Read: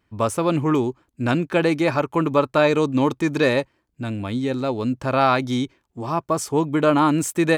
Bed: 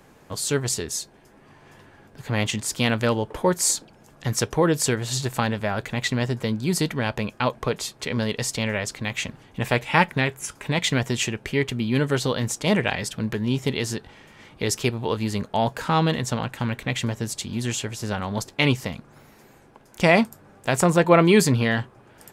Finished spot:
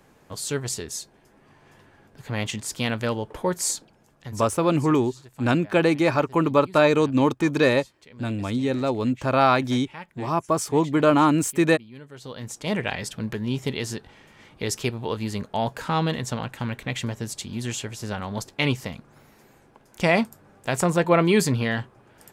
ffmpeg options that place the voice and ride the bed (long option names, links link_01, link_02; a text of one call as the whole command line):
ffmpeg -i stem1.wav -i stem2.wav -filter_complex "[0:a]adelay=4200,volume=-0.5dB[link_01];[1:a]volume=14.5dB,afade=type=out:start_time=3.66:duration=0.92:silence=0.133352,afade=type=in:start_time=12.14:duration=0.8:silence=0.11885[link_02];[link_01][link_02]amix=inputs=2:normalize=0" out.wav